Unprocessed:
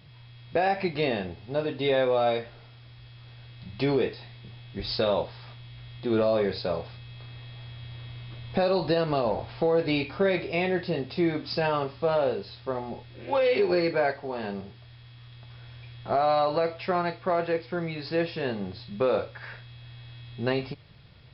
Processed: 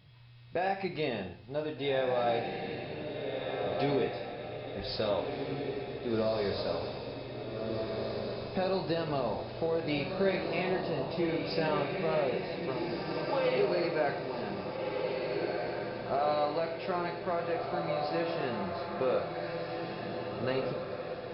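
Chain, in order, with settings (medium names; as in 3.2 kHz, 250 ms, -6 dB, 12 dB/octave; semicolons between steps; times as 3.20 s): echo that smears into a reverb 1647 ms, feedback 52%, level -3 dB; gated-style reverb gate 150 ms flat, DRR 8.5 dB; trim -7 dB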